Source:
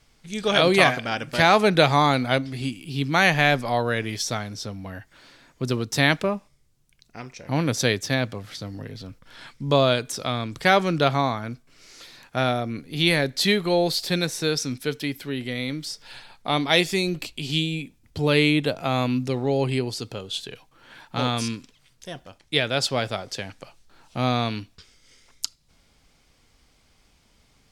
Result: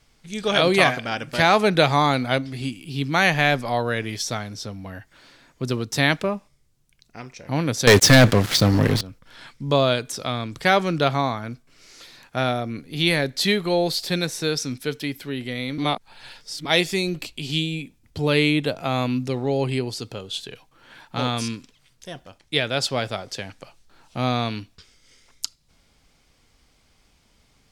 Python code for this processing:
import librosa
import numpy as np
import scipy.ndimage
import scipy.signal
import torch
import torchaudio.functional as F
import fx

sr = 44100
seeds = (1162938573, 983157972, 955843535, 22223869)

y = fx.leveller(x, sr, passes=5, at=(7.87, 9.01))
y = fx.edit(y, sr, fx.reverse_span(start_s=15.78, length_s=0.87), tone=tone)